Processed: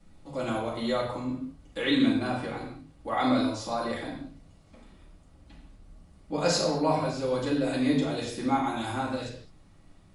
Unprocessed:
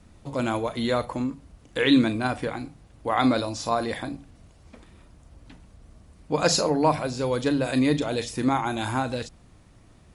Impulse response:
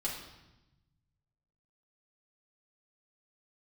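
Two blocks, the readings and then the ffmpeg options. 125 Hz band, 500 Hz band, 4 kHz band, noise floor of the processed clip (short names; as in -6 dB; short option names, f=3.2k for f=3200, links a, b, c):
-4.5 dB, -3.5 dB, -3.5 dB, -56 dBFS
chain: -filter_complex "[1:a]atrim=start_sample=2205,afade=t=out:st=0.28:d=0.01,atrim=end_sample=12789[a];[0:a][a]afir=irnorm=-1:irlink=0,volume=-7dB"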